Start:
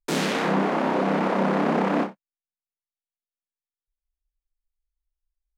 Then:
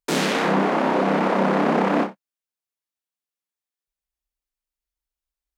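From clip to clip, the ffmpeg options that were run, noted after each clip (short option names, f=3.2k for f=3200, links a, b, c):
-af "highpass=f=140:p=1,volume=3.5dB"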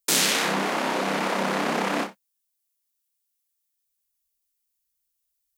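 -af "crystalizer=i=8.5:c=0,volume=-8.5dB"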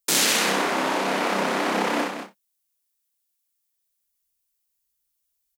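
-af "aecho=1:1:64.14|195.3:0.562|0.398"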